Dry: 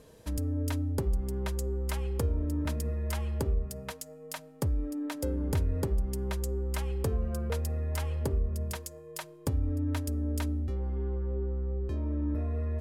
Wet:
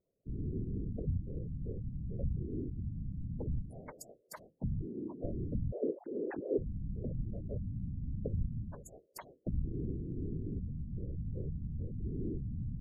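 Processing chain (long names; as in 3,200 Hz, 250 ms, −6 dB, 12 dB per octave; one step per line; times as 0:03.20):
0:05.72–0:06.58: three sine waves on the formant tracks
noise gate with hold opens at −37 dBFS
gate on every frequency bin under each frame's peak −10 dB strong
random phases in short frames
level −6 dB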